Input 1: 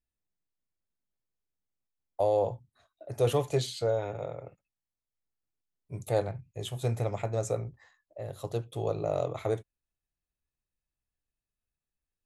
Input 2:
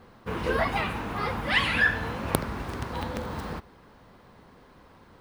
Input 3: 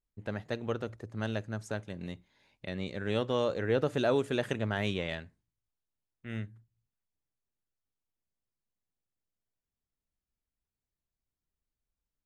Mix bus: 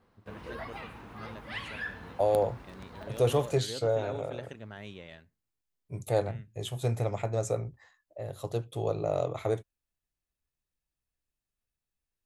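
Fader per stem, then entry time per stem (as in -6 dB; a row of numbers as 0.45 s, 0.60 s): +0.5 dB, -15.0 dB, -12.5 dB; 0.00 s, 0.00 s, 0.00 s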